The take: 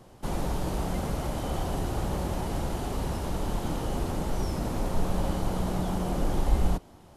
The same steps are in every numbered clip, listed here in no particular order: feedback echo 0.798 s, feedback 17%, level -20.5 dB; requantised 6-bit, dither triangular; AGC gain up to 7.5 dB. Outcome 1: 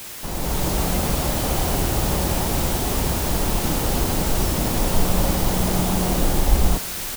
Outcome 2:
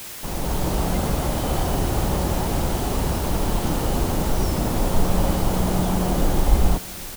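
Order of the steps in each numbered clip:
requantised > feedback echo > AGC; AGC > requantised > feedback echo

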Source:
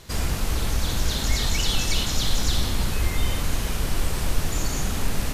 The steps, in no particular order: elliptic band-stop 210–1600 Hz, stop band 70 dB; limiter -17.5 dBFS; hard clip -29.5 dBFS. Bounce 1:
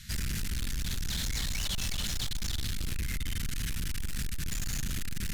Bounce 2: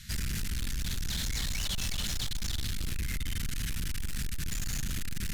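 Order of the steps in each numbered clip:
elliptic band-stop > limiter > hard clip; limiter > elliptic band-stop > hard clip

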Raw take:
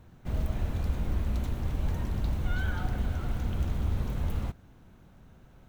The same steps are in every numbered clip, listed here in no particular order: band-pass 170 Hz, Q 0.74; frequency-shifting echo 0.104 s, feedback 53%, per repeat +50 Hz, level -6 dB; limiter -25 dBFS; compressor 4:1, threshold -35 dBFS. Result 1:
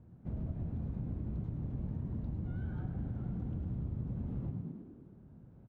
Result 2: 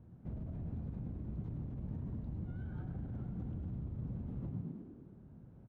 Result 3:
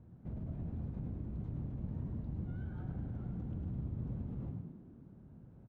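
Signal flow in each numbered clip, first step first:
frequency-shifting echo > band-pass > compressor > limiter; frequency-shifting echo > limiter > compressor > band-pass; limiter > compressor > frequency-shifting echo > band-pass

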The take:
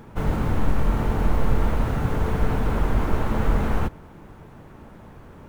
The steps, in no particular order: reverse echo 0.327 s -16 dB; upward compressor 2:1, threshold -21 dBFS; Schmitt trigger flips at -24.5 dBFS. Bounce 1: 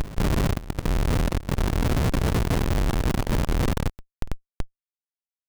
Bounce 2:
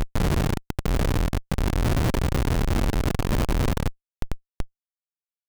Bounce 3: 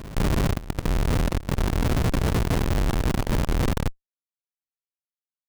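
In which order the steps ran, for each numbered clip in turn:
upward compressor > Schmitt trigger > reverse echo; upward compressor > reverse echo > Schmitt trigger; Schmitt trigger > upward compressor > reverse echo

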